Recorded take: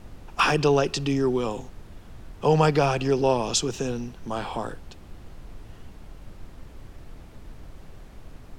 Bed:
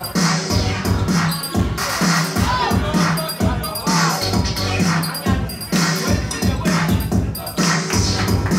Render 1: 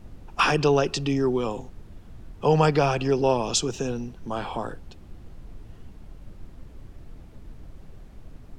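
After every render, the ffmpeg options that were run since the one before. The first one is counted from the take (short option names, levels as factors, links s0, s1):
-af "afftdn=nr=6:nf=-46"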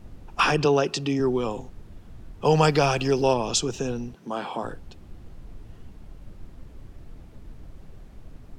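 -filter_complex "[0:a]asettb=1/sr,asplit=3[s0][s1][s2];[s0]atrim=end=0.654[s3];[s1]atrim=start=0.65:end=1.2,asetpts=PTS-STARTPTS,afade=t=in:d=0.004:c=qsin,afade=t=out:st=0.546:d=0.004:c=qsin,highpass=130[s4];[s2]atrim=start=1.196[s5];[s3][s4]acrossfade=d=0.004:c1=hsin:c2=qsin[s6];[s6][s5]acrossfade=d=0.004:c1=qsin:c2=hsin,asettb=1/sr,asplit=3[s7][s8][s9];[s7]atrim=end=2.454[s10];[s8]atrim=start=2.45:end=3.34,asetpts=PTS-STARTPTS,afade=t=in:d=0.004:c=qsin,afade=t=out:st=0.886:d=0.004:c=qsin,highshelf=f=3300:g=9[s11];[s9]atrim=start=3.336[s12];[s10][s11]acrossfade=d=0.004:c1=hsin:c2=qsin[s13];[s13][s12]acrossfade=d=0.004:c1=qsin:c2=hsin,asettb=1/sr,asplit=3[s14][s15][s16];[s14]atrim=end=4.154[s17];[s15]atrim=start=4.15:end=4.63,asetpts=PTS-STARTPTS,afade=t=in:d=0.004:c=qsin,afade=t=out:st=0.476:d=0.004:c=qsin,highpass=f=160:w=0.5412,highpass=f=160:w=1.3066[s18];[s16]atrim=start=4.626[s19];[s17][s18]acrossfade=d=0.004:c1=hsin:c2=qsin[s20];[s20][s19]acrossfade=d=0.004:c1=qsin:c2=hsin"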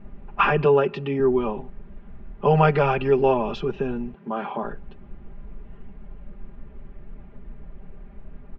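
-af "lowpass=f=2500:w=0.5412,lowpass=f=2500:w=1.3066,aecho=1:1:5:0.8"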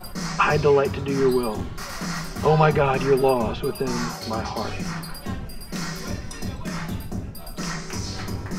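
-filter_complex "[1:a]volume=0.224[s0];[0:a][s0]amix=inputs=2:normalize=0"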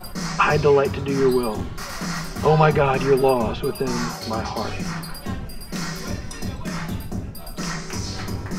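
-af "volume=1.19"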